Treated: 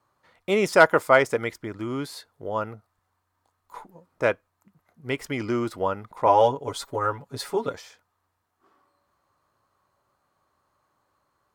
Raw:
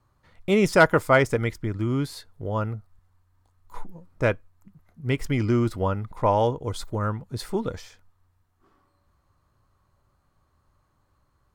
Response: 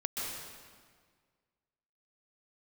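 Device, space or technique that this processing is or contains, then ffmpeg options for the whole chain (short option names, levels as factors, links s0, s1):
filter by subtraction: -filter_complex "[0:a]asettb=1/sr,asplit=3[s0][s1][s2];[s0]atrim=end=6.264[s3];[s1]atrim=start=6.26:end=7.74,asetpts=PTS-STARTPTS,afade=t=in:d=0.004:c=qsin,afade=t=out:st=1.476:d=0.004:c=qsin,aecho=1:1:7.2:0.94,atrim=end_sample=65268[s4];[s2]atrim=start=7.736[s5];[s3][s4]acrossfade=d=0.004:c1=hsin:c2=qsin[s6];[s6][s5]acrossfade=d=0.004:c1=qsin:c2=hsin,asplit=2[s7][s8];[s8]lowpass=630,volume=-1[s9];[s7][s9]amix=inputs=2:normalize=0"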